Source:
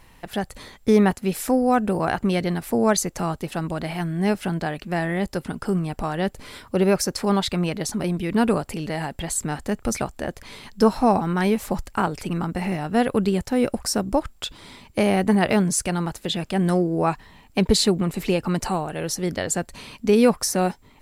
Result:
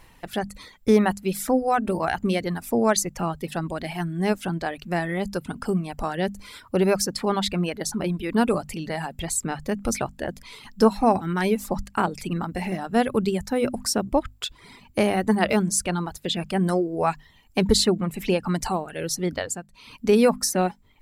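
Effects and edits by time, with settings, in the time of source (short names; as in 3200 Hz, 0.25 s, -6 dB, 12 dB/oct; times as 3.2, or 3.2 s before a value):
19.37–20 dip -9.5 dB, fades 0.24 s
whole clip: reverb removal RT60 0.97 s; notches 50/100/150/200/250 Hz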